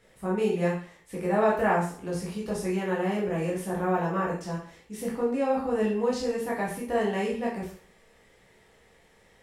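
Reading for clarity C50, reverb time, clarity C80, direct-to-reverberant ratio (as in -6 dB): 5.0 dB, 0.50 s, 9.0 dB, -5.0 dB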